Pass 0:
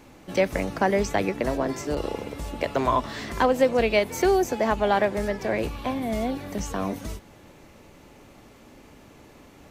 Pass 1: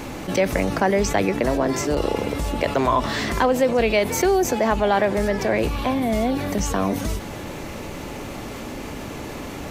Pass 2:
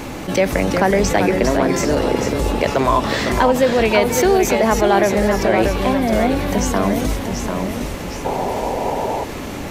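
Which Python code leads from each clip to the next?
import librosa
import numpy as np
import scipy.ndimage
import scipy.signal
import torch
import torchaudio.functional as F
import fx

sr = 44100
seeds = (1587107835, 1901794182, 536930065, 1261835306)

y1 = fx.env_flatten(x, sr, amount_pct=50)
y2 = fx.echo_pitch(y1, sr, ms=341, semitones=-1, count=2, db_per_echo=-6.0)
y2 = fx.spec_paint(y2, sr, seeds[0], shape='noise', start_s=8.25, length_s=0.99, low_hz=370.0, high_hz=1000.0, level_db=-26.0)
y2 = y2 * librosa.db_to_amplitude(3.5)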